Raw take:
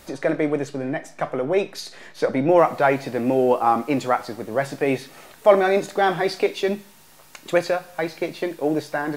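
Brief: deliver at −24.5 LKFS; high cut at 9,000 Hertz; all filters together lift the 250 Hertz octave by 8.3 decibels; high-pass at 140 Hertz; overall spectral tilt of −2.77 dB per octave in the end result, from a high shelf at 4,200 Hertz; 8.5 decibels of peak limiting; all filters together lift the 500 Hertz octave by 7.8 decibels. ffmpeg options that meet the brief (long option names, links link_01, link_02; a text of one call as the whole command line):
ffmpeg -i in.wav -af "highpass=140,lowpass=9000,equalizer=frequency=250:width_type=o:gain=8,equalizer=frequency=500:width_type=o:gain=7.5,highshelf=frequency=4200:gain=3.5,volume=-7dB,alimiter=limit=-13dB:level=0:latency=1" out.wav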